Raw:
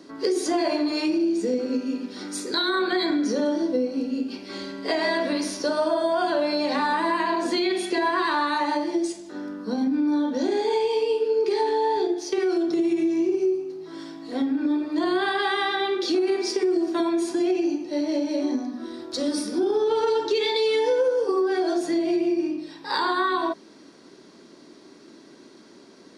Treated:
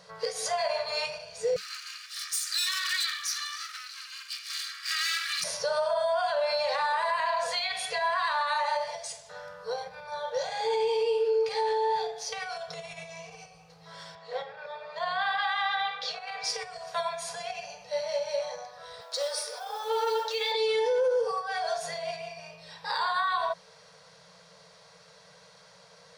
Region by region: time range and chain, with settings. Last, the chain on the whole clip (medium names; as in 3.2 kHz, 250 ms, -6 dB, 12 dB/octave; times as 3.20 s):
1.56–5.44 s: comb filter that takes the minimum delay 1.7 ms + steep high-pass 1.2 kHz 96 dB/octave + treble shelf 3.3 kHz +10 dB
14.15–16.44 s: high-pass 190 Hz + distance through air 110 m
19.00–20.52 s: high-pass 470 Hz 24 dB/octave + modulation noise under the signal 28 dB
whole clip: FFT band-reject 190–440 Hz; peak limiter -20 dBFS